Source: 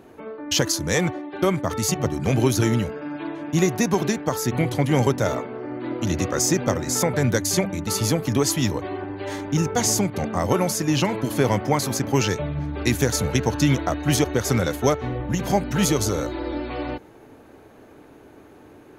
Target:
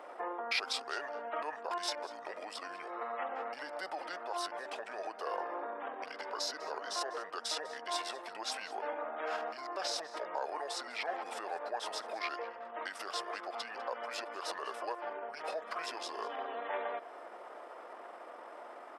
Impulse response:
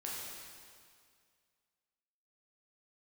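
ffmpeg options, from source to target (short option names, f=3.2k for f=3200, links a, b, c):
-af "highshelf=f=2k:g=-7,acompressor=threshold=-33dB:ratio=4,lowpass=f=2.7k:p=1,asetrate=35002,aresample=44100,atempo=1.25992,alimiter=level_in=7dB:limit=-24dB:level=0:latency=1:release=37,volume=-7dB,highpass=f=630:w=0.5412,highpass=f=630:w=1.3066,aecho=1:1:199:0.112,volume=11dB"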